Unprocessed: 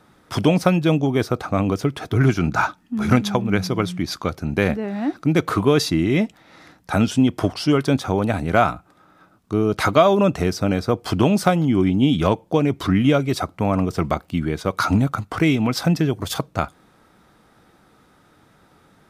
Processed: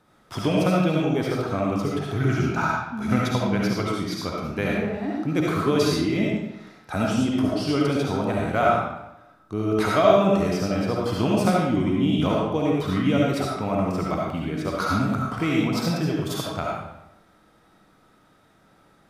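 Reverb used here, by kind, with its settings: algorithmic reverb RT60 0.88 s, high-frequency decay 0.8×, pre-delay 30 ms, DRR -3.5 dB; trim -8 dB

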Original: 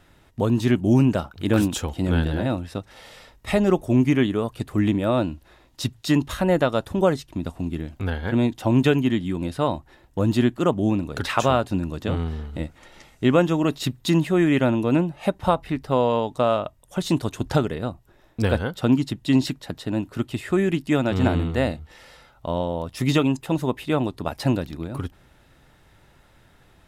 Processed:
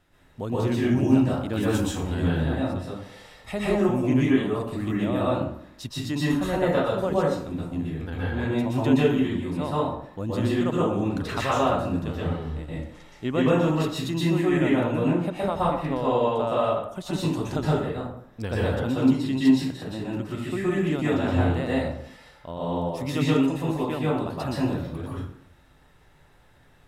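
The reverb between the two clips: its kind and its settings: plate-style reverb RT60 0.69 s, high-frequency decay 0.6×, pre-delay 110 ms, DRR -7.5 dB; trim -10 dB

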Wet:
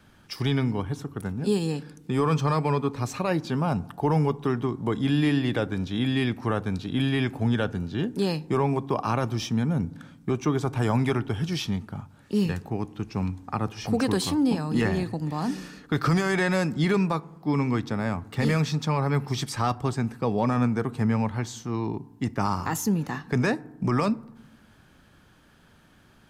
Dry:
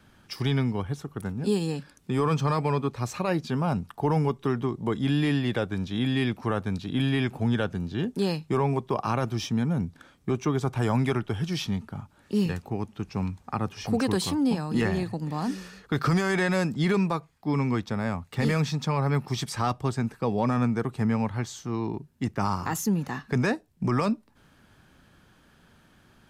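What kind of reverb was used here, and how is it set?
FDN reverb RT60 0.96 s, low-frequency decay 1.55×, high-frequency decay 0.4×, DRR 18 dB; trim +1 dB

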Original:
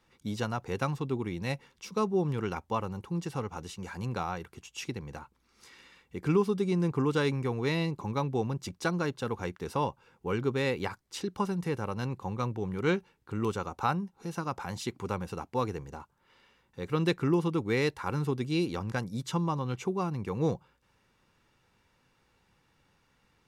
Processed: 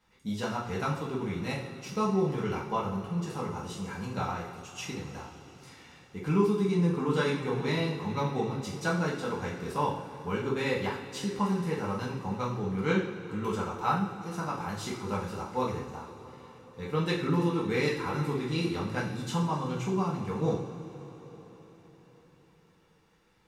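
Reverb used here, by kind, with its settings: two-slope reverb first 0.51 s, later 4.9 s, from -18 dB, DRR -6 dB; trim -5.5 dB

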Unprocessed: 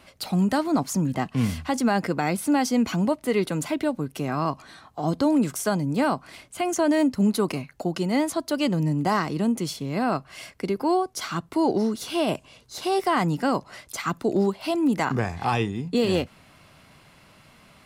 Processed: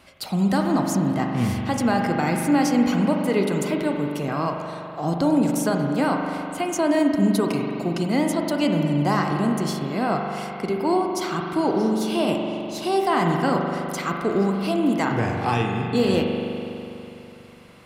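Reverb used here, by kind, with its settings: spring tank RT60 3 s, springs 41 ms, chirp 70 ms, DRR 1.5 dB

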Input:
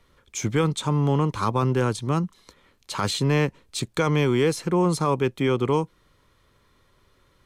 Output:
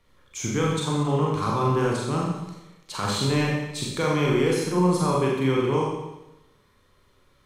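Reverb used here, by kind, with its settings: Schroeder reverb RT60 0.98 s, combs from 30 ms, DRR -3.5 dB; trim -5 dB

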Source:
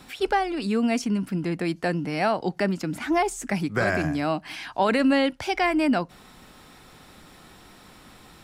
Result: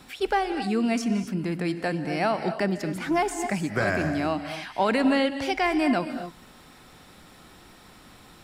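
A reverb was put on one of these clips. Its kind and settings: gated-style reverb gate 290 ms rising, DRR 9 dB; trim -1.5 dB

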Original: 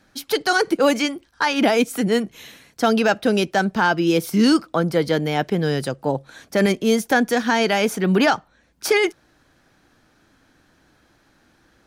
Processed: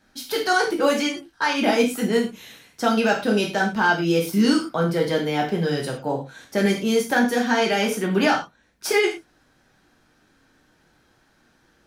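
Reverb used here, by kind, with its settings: gated-style reverb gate 140 ms falling, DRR -1.5 dB; trim -5.5 dB

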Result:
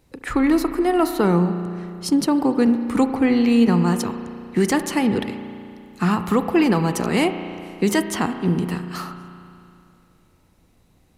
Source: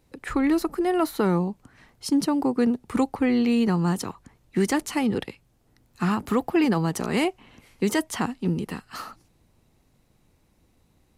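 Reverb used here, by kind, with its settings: spring tank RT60 2.6 s, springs 34 ms, chirp 40 ms, DRR 8.5 dB; trim +4 dB

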